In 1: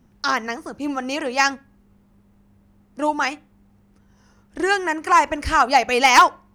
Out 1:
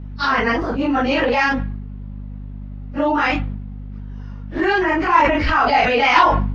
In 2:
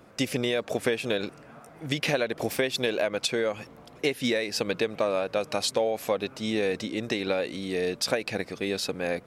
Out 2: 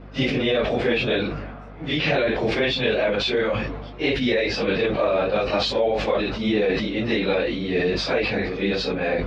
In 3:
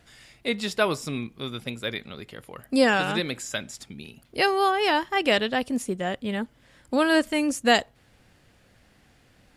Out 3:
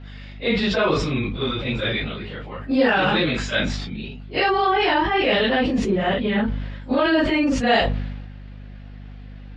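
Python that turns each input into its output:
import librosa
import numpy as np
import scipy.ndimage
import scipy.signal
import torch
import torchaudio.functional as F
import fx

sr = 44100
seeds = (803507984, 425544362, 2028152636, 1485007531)

p1 = fx.phase_scramble(x, sr, seeds[0], window_ms=100)
p2 = fx.add_hum(p1, sr, base_hz=50, snr_db=20)
p3 = fx.over_compress(p2, sr, threshold_db=-26.0, ratio=-1.0)
p4 = p2 + (p3 * librosa.db_to_amplitude(2.0))
p5 = scipy.signal.sosfilt(scipy.signal.butter(4, 4000.0, 'lowpass', fs=sr, output='sos'), p4)
p6 = fx.sustainer(p5, sr, db_per_s=41.0)
y = p6 * librosa.db_to_amplitude(-1.5)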